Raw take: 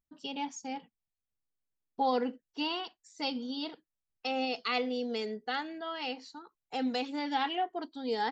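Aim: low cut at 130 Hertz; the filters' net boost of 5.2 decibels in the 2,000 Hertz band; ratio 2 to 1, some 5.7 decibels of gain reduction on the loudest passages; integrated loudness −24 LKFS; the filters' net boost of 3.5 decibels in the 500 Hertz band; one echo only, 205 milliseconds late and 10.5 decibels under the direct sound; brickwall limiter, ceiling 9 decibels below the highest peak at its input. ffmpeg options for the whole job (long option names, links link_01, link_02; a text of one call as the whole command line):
ffmpeg -i in.wav -af "highpass=130,equalizer=frequency=500:width_type=o:gain=3.5,equalizer=frequency=2000:width_type=o:gain=6.5,acompressor=threshold=-33dB:ratio=2,alimiter=level_in=5.5dB:limit=-24dB:level=0:latency=1,volume=-5.5dB,aecho=1:1:205:0.299,volume=15dB" out.wav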